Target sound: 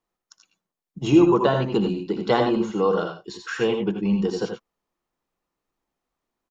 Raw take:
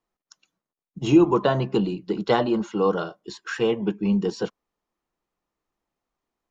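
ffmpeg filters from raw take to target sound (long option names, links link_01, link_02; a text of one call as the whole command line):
ffmpeg -i in.wav -af "aecho=1:1:63|81|92|100:0.126|0.398|0.316|0.211" out.wav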